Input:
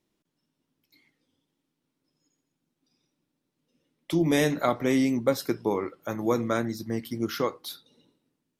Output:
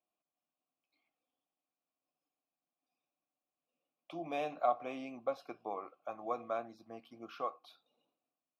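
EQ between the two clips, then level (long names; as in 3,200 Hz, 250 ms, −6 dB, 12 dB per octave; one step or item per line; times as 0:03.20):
formant filter a
parametric band 400 Hz −6 dB 0.29 octaves
parametric band 7,700 Hz −5 dB 0.46 octaves
+1.0 dB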